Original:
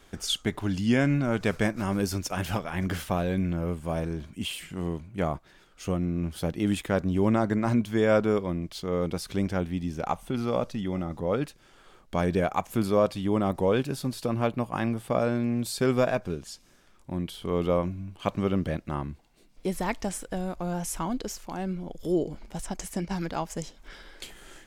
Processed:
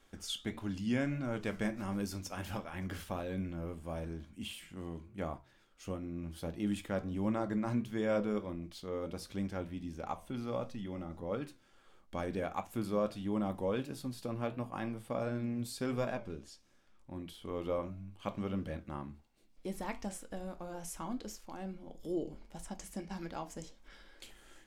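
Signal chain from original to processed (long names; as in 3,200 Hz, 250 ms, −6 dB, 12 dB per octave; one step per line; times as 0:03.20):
convolution reverb, pre-delay 4 ms, DRR 10 dB
flanger 1.5 Hz, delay 9.8 ms, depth 4.5 ms, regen −80%
0:16.13–0:17.16: high-shelf EQ 10,000 Hz −8.5 dB
level −6.5 dB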